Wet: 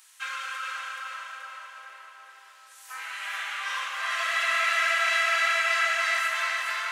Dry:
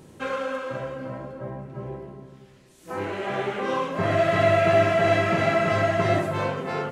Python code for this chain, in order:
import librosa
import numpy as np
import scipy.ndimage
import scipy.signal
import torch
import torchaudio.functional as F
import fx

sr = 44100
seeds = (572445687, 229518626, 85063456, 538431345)

y = scipy.signal.sosfilt(scipy.signal.butter(4, 1300.0, 'highpass', fs=sr, output='sos'), x)
y = fx.high_shelf(y, sr, hz=3900.0, db=8.5)
y = fx.echo_feedback(y, sr, ms=428, feedback_pct=50, wet_db=-4.5)
y = fx.rev_freeverb(y, sr, rt60_s=2.8, hf_ratio=0.3, predelay_ms=110, drr_db=3.0)